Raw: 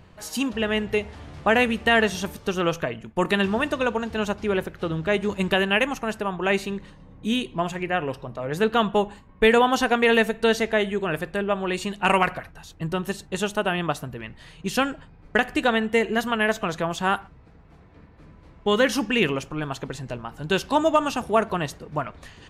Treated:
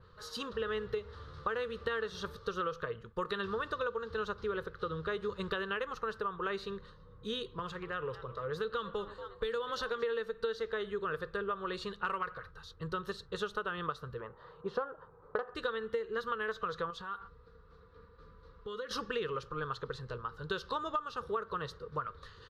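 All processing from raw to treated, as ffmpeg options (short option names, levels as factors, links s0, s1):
-filter_complex "[0:a]asettb=1/sr,asplit=3[s0][s1][s2];[s0]atrim=end=7.594[s3];[s1]atrim=start=7.59:end=10.03,asetpts=PTS-STARTPTS,afade=t=in:d=0.004:c=qsin,afade=t=out:st=2.436:d=0.004:c=qsin,asplit=6[s4][s5][s6][s7][s8][s9];[s5]adelay=231,afreqshift=92,volume=0.1[s10];[s6]adelay=462,afreqshift=184,volume=0.061[s11];[s7]adelay=693,afreqshift=276,volume=0.0372[s12];[s8]adelay=924,afreqshift=368,volume=0.0226[s13];[s9]adelay=1155,afreqshift=460,volume=0.0138[s14];[s4][s10][s11][s12][s13][s14]amix=inputs=6:normalize=0,atrim=end_sample=107604,acrossover=split=160|3000[s15][s16][s17];[s16]acompressor=threshold=0.0398:ratio=2:attack=3.2:release=140:knee=2.83:detection=peak[s18];[s15][s18][s17]amix=inputs=3:normalize=0[s19];[s2]atrim=start=10.026[s20];[s3][s19]acrossfade=d=0.004:c1=hsin:c2=qsin[s21];[s21][s20]acrossfade=d=0.004:c1=qsin:c2=hsin,asettb=1/sr,asplit=3[s22][s23][s24];[s22]atrim=end=14.204[s25];[s23]atrim=start=14.2:end=15.55,asetpts=PTS-STARTPTS,afade=t=in:d=0.004:c=qsin,afade=t=out:st=1.346:d=0.004:c=qsin,lowpass=f=790:t=q:w=2.3,aemphasis=mode=production:type=riaa,acontrast=87[s26];[s24]atrim=start=15.546[s27];[s25][s26]acrossfade=d=0.004:c1=hsin:c2=qsin[s28];[s28][s27]acrossfade=d=0.004:c1=qsin:c2=hsin,asettb=1/sr,asplit=3[s29][s30][s31];[s29]atrim=end=16.904[s32];[s30]atrim=start=16.9:end=18.91,asetpts=PTS-STARTPTS,afade=t=in:d=0.004:c=qsin,afade=t=out:st=2.006:d=0.004:c=qsin,aecho=1:1:4.2:0.43,atrim=end_sample=88641,acompressor=threshold=0.0282:ratio=10:attack=3.2:release=140:knee=1:detection=peak[s33];[s31]atrim=start=18.906[s34];[s32][s33]acrossfade=d=0.004:c1=hsin:c2=qsin[s35];[s35][s34]acrossfade=d=0.004:c1=qsin:c2=hsin,firequalizer=gain_entry='entry(110,0);entry(270,-14);entry(470,8);entry(680,-16);entry(1200,10);entry(2300,-12);entry(3900,6);entry(7200,-12)':delay=0.05:min_phase=1,acompressor=threshold=0.0631:ratio=10,adynamicequalizer=threshold=0.00447:dfrequency=4200:dqfactor=0.7:tfrequency=4200:tqfactor=0.7:attack=5:release=100:ratio=0.375:range=2:mode=cutabove:tftype=highshelf,volume=0.422"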